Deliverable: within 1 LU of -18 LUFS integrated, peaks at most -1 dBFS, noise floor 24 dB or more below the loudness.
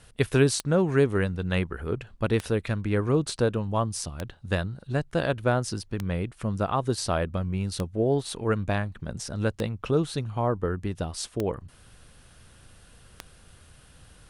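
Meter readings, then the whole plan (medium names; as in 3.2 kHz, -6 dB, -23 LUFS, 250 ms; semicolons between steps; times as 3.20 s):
clicks found 8; loudness -27.5 LUFS; peak level -7.5 dBFS; loudness target -18.0 LUFS
-> de-click; trim +9.5 dB; peak limiter -1 dBFS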